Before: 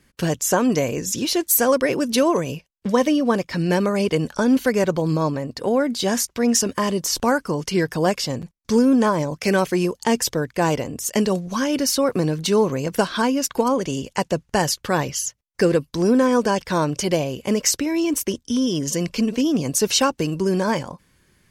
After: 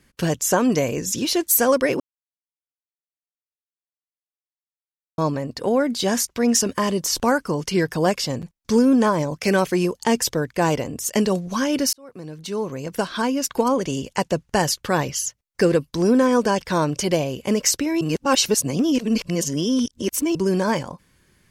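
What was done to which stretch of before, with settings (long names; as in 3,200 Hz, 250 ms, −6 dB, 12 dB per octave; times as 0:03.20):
0:02.00–0:05.18: silence
0:11.93–0:13.66: fade in
0:18.01–0:20.35: reverse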